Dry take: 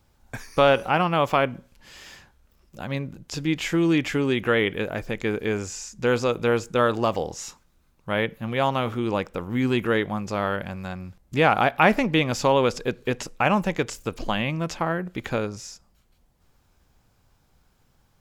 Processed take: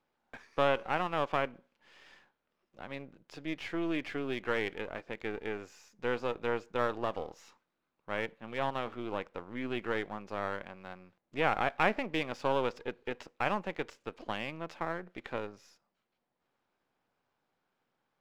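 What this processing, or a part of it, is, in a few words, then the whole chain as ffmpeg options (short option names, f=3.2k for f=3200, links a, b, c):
crystal radio: -af "highpass=290,lowpass=3.1k,aeval=exprs='if(lt(val(0),0),0.447*val(0),val(0))':c=same,volume=-8dB"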